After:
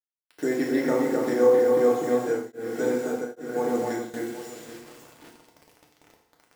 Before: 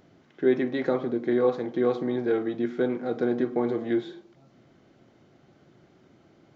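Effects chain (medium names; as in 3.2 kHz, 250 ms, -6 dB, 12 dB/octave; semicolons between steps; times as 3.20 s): careless resampling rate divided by 6×, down filtered, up hold; peaking EQ 360 Hz -4.5 dB 0.35 oct; echo whose repeats swap between lows and highs 261 ms, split 2.4 kHz, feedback 51%, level -3.5 dB; low-pass that closes with the level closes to 1.5 kHz, closed at -16 dBFS; word length cut 8-bit, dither none; bass shelf 150 Hz -6.5 dB; hum notches 60/120/180/240 Hz; FDN reverb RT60 0.95 s, low-frequency decay 0.85×, high-frequency decay 0.95×, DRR -1.5 dB; 2.11–4.14 s: tremolo of two beating tones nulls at 1.2 Hz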